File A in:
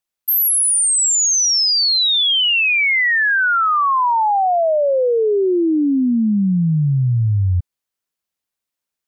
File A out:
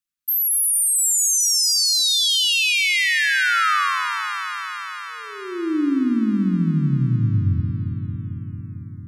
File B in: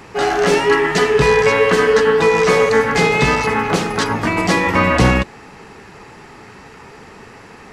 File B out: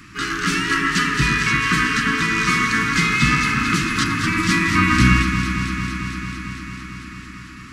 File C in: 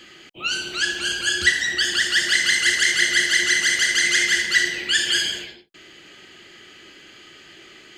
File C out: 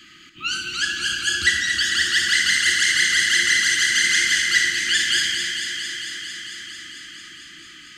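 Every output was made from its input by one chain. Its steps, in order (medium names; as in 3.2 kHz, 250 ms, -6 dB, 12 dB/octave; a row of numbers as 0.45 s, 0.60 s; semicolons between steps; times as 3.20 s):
elliptic band-stop 310–1200 Hz, stop band 50 dB; on a send: echo whose repeats swap between lows and highs 112 ms, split 1.7 kHz, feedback 89%, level -6 dB; on the sum: normalise loudness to -18 LUFS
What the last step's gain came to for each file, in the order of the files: -4.5 dB, -0.5 dB, -0.5 dB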